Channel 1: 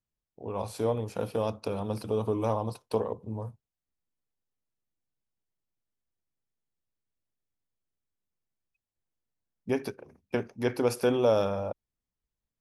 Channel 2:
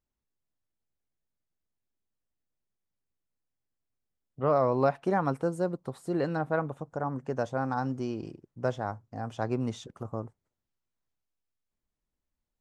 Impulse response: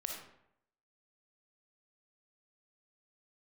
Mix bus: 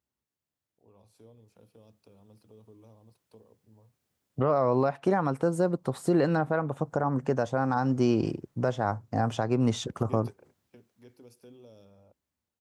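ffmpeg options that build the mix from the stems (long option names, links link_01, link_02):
-filter_complex "[0:a]acrossover=split=420|3000[link_01][link_02][link_03];[link_02]acompressor=threshold=-41dB:ratio=6[link_04];[link_01][link_04][link_03]amix=inputs=3:normalize=0,adelay=400,volume=-8dB[link_05];[1:a]alimiter=limit=-20.5dB:level=0:latency=1:release=386,dynaudnorm=framelen=330:gausssize=9:maxgain=12dB,highpass=frequency=69:width=0.5412,highpass=frequency=69:width=1.3066,volume=1dB,asplit=2[link_06][link_07];[link_07]apad=whole_len=573519[link_08];[link_05][link_08]sidechaingate=range=-15dB:threshold=-57dB:ratio=16:detection=peak[link_09];[link_09][link_06]amix=inputs=2:normalize=0,alimiter=limit=-14.5dB:level=0:latency=1:release=387"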